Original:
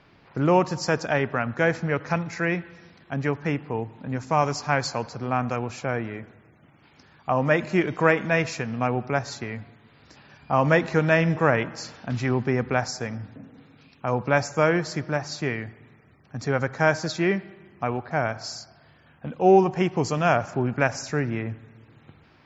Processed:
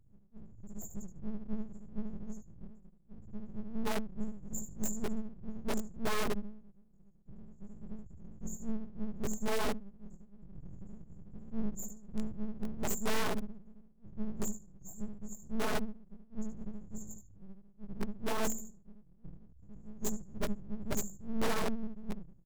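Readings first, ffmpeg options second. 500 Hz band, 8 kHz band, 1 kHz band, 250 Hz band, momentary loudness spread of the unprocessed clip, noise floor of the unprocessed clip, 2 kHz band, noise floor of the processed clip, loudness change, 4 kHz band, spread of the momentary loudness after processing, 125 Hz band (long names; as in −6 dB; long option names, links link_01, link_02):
−18.5 dB, can't be measured, −18.5 dB, −11.5 dB, 13 LU, −57 dBFS, −19.5 dB, −60 dBFS, −15.0 dB, −10.5 dB, 20 LU, −19.5 dB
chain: -filter_complex "[0:a]highshelf=frequency=2700:gain=-2.5,aecho=1:1:1.4:0.34,acrossover=split=460|3000[link_01][link_02][link_03];[link_02]acompressor=threshold=-34dB:ratio=6[link_04];[link_01][link_04][link_03]amix=inputs=3:normalize=0,afftdn=noise_reduction=18:noise_floor=-37,lowshelf=frequency=220:gain=9.5,areverse,acompressor=threshold=-33dB:ratio=12,areverse,afftfilt=real='re*(1-between(b*sr/4096,110,6600))':imag='im*(1-between(b*sr/4096,110,6600))':win_size=4096:overlap=0.75,bandreject=frequency=131:width_type=h:width=4,bandreject=frequency=262:width_type=h:width=4,bandreject=frequency=393:width_type=h:width=4,bandreject=frequency=524:width_type=h:width=4,asplit=2[link_05][link_06];[link_06]adelay=74,lowpass=frequency=4400:poles=1,volume=-5dB,asplit=2[link_07][link_08];[link_08]adelay=74,lowpass=frequency=4400:poles=1,volume=0.23,asplit=2[link_09][link_10];[link_10]adelay=74,lowpass=frequency=4400:poles=1,volume=0.23[link_11];[link_07][link_09][link_11]amix=inputs=3:normalize=0[link_12];[link_05][link_12]amix=inputs=2:normalize=0,aeval=exprs='(mod(84.1*val(0)+1,2)-1)/84.1':channel_layout=same,flanger=delay=17:depth=2.9:speed=0.36,aeval=exprs='abs(val(0))':channel_layout=same,volume=17dB"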